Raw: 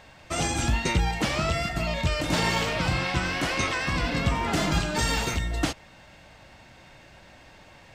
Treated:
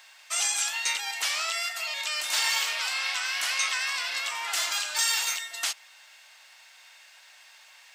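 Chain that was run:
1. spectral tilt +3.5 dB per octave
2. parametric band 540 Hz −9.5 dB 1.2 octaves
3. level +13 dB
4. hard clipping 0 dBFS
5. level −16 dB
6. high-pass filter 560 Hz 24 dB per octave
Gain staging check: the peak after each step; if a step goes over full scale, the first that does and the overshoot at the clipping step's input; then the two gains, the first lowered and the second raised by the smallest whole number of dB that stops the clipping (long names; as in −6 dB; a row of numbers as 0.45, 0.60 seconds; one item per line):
−9.5, −9.5, +3.5, 0.0, −16.0, −14.0 dBFS
step 3, 3.5 dB
step 3 +9 dB, step 5 −12 dB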